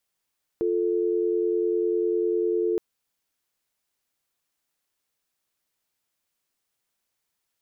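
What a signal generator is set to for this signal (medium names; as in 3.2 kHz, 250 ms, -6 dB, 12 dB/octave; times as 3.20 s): call progress tone dial tone, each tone -24 dBFS 2.17 s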